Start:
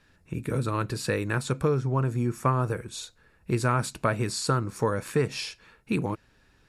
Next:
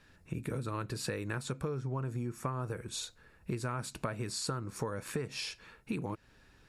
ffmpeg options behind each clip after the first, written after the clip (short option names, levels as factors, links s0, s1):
-af "acompressor=threshold=0.02:ratio=5"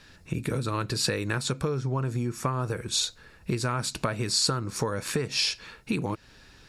-af "equalizer=f=4700:t=o:w=1.4:g=7.5,volume=2.37"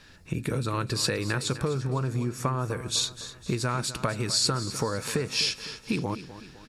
-af "aecho=1:1:253|506|759|1012|1265:0.2|0.0978|0.0479|0.0235|0.0115"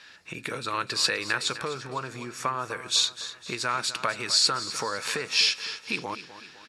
-af "bandpass=f=2500:t=q:w=0.55:csg=0,volume=2"